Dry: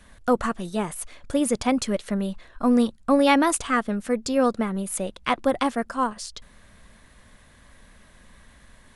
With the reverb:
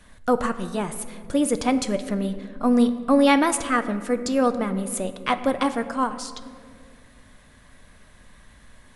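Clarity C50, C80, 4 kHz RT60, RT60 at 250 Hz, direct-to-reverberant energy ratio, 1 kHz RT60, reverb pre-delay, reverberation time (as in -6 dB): 12.0 dB, 13.5 dB, 1.1 s, 3.0 s, 9.0 dB, 1.8 s, 7 ms, 2.2 s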